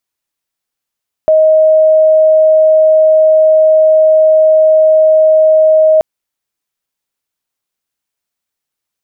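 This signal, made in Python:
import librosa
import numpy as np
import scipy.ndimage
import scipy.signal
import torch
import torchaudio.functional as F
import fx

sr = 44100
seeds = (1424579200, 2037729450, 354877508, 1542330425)

y = 10.0 ** (-4.0 / 20.0) * np.sin(2.0 * np.pi * (628.0 * (np.arange(round(4.73 * sr)) / sr)))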